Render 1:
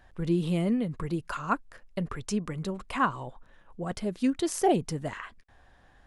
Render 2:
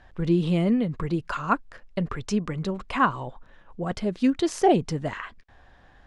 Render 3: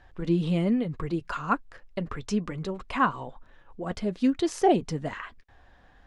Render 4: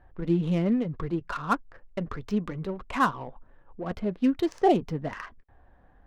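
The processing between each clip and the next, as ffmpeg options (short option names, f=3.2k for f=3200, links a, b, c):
-af "lowpass=5.8k,volume=4.5dB"
-af "flanger=delay=2.3:depth=2:regen=-62:speed=1.1:shape=sinusoidal,volume=1.5dB"
-af "adynamicsmooth=sensitivity=6:basefreq=1.3k"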